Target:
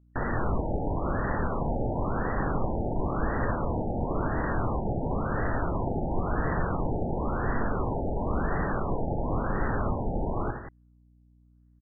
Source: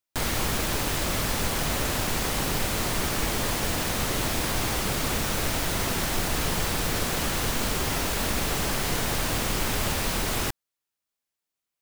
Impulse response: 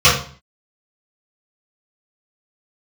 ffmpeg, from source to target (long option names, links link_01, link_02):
-af "aecho=1:1:67|84|181:0.237|0.316|0.251,aeval=exprs='val(0)+0.00126*(sin(2*PI*60*n/s)+sin(2*PI*2*60*n/s)/2+sin(2*PI*3*60*n/s)/3+sin(2*PI*4*60*n/s)/4+sin(2*PI*5*60*n/s)/5)':channel_layout=same,afftfilt=real='re*lt(b*sr/1024,880*pow(2000/880,0.5+0.5*sin(2*PI*0.96*pts/sr)))':imag='im*lt(b*sr/1024,880*pow(2000/880,0.5+0.5*sin(2*PI*0.96*pts/sr)))':win_size=1024:overlap=0.75"